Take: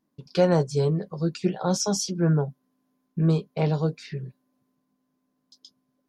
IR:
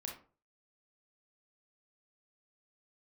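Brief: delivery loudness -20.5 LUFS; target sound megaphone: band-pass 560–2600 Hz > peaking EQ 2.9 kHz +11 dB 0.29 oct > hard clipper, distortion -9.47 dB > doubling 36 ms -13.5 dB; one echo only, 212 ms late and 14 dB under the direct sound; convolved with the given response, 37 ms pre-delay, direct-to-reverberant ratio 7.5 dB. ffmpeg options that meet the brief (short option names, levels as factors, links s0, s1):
-filter_complex "[0:a]aecho=1:1:212:0.2,asplit=2[s0][s1];[1:a]atrim=start_sample=2205,adelay=37[s2];[s1][s2]afir=irnorm=-1:irlink=0,volume=0.531[s3];[s0][s3]amix=inputs=2:normalize=0,highpass=560,lowpass=2600,equalizer=f=2900:t=o:w=0.29:g=11,asoftclip=type=hard:threshold=0.0631,asplit=2[s4][s5];[s5]adelay=36,volume=0.211[s6];[s4][s6]amix=inputs=2:normalize=0,volume=4.73"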